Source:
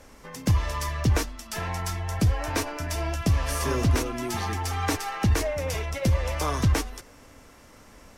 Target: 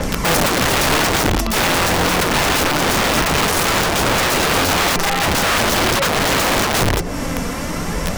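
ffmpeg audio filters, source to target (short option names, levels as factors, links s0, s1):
-filter_complex "[0:a]equalizer=f=170:w=4.3:g=14.5,apsyclip=9.44,asplit=2[s0][s1];[s1]acompressor=threshold=0.126:ratio=10,volume=1.33[s2];[s0][s2]amix=inputs=2:normalize=0,aphaser=in_gain=1:out_gain=1:delay=4.3:decay=0.32:speed=0.47:type=triangular,acrossover=split=370|850[s3][s4][s5];[s3]acompressor=threshold=0.447:ratio=4[s6];[s4]acompressor=threshold=0.0794:ratio=4[s7];[s5]acompressor=threshold=0.0562:ratio=4[s8];[s6][s7][s8]amix=inputs=3:normalize=0,aeval=exprs='(mod(3.55*val(0)+1,2)-1)/3.55':c=same,adynamicequalizer=threshold=0.0398:dfrequency=6900:dqfactor=0.7:tfrequency=6900:tqfactor=0.7:attack=5:release=100:ratio=0.375:range=2:mode=cutabove:tftype=highshelf"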